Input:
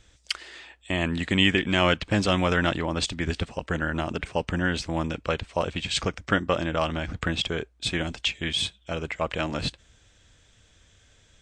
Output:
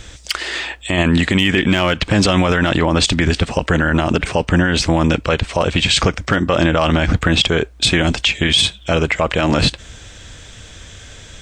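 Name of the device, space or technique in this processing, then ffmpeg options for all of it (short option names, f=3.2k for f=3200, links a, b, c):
loud club master: -af "acompressor=threshold=-33dB:ratio=1.5,asoftclip=type=hard:threshold=-15dB,alimiter=level_in=24.5dB:limit=-1dB:release=50:level=0:latency=1,volume=-3.5dB"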